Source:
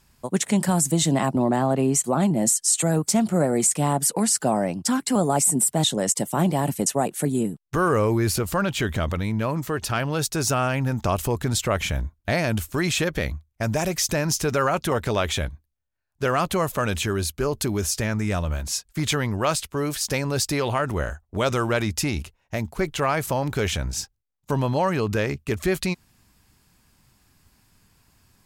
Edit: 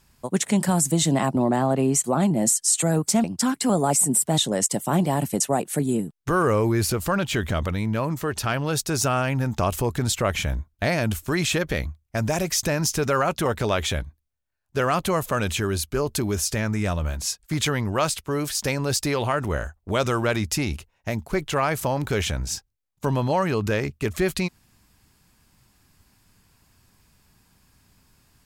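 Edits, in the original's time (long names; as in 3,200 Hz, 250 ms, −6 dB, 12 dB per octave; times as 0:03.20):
0:03.24–0:04.70: remove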